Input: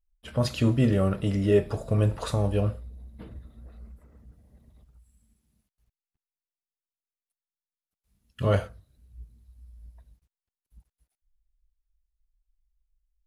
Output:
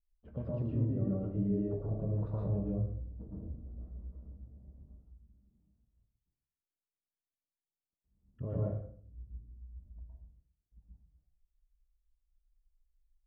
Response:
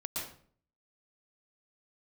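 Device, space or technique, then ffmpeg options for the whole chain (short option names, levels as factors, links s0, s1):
television next door: -filter_complex "[0:a]acompressor=threshold=0.0316:ratio=5,lowpass=520[s0];[1:a]atrim=start_sample=2205[s1];[s0][s1]afir=irnorm=-1:irlink=0,asettb=1/sr,asplit=3[s2][s3][s4];[s2]atrim=end=3.114[s5];[s3]atrim=start=3.11:end=3.81,asetpts=PTS-STARTPTS,afade=t=in:d=0.004:c=qsin,afade=t=out:st=0.696:d=0.004:c=qsin,lowpass=1200[s6];[s4]atrim=start=3.806[s7];[s5][s6]acrossfade=d=0.004:c1=hsin:c2=qsin[s8];[s8][s7]acrossfade=d=0.004:c1=qsin:c2=hsin,volume=0.75"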